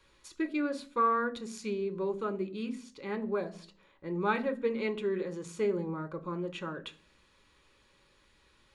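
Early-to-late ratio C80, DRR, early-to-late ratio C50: 22.0 dB, 6.5 dB, 18.0 dB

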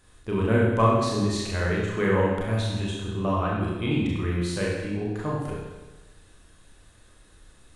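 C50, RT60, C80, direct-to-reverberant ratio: 0.0 dB, 1.2 s, 2.5 dB, -4.5 dB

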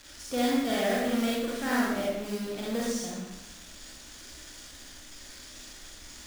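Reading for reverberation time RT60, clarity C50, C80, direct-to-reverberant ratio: 0.90 s, -2.0 dB, 2.0 dB, -5.5 dB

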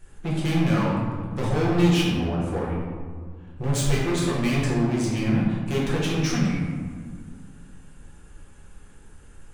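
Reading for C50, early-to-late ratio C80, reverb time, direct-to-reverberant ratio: 0.0 dB, 2.5 dB, 1.8 s, -6.5 dB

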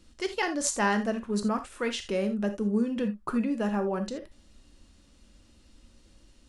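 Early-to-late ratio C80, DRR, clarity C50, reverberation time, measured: 19.5 dB, 7.0 dB, 11.5 dB, no single decay rate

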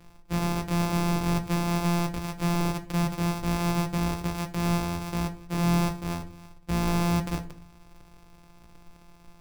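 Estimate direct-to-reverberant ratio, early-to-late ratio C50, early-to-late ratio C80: 6.5 dB, 15.0 dB, 19.5 dB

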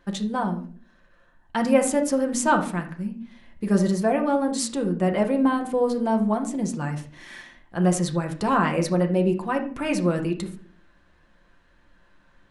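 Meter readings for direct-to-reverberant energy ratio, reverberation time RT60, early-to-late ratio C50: 2.5 dB, no single decay rate, 10.5 dB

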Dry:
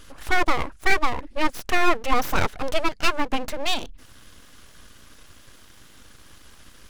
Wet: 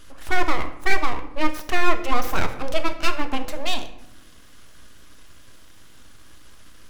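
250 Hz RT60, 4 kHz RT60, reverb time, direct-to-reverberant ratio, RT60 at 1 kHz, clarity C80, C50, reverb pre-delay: 1.3 s, 0.50 s, 0.85 s, 7.0 dB, 0.80 s, 14.0 dB, 11.5 dB, 3 ms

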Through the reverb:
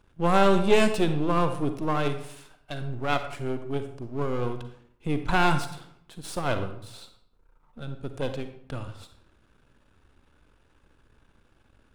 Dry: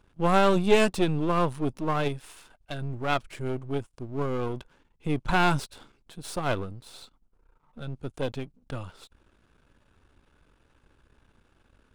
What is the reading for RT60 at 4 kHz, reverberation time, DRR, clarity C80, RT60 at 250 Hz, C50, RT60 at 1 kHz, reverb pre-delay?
0.45 s, 0.70 s, 8.0 dB, 12.0 dB, 0.80 s, 9.0 dB, 0.65 s, 38 ms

